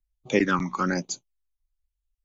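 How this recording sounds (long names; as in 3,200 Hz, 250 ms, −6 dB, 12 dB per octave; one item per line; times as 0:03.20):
phaser sweep stages 12, 1.1 Hz, lowest notch 480–1,800 Hz
Ogg Vorbis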